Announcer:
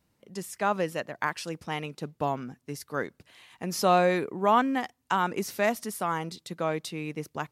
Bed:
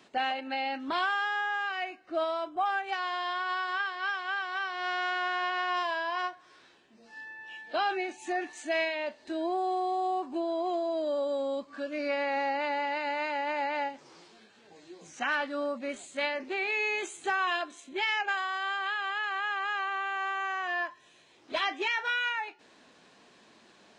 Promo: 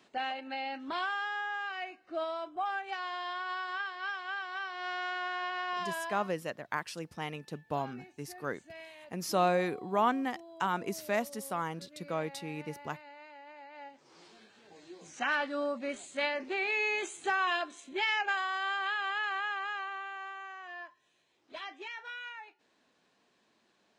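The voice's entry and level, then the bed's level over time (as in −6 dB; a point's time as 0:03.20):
5.50 s, −5.5 dB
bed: 0:06.05 −5 dB
0:06.29 −19.5 dB
0:13.71 −19.5 dB
0:14.26 −1 dB
0:19.28 −1 dB
0:20.57 −13 dB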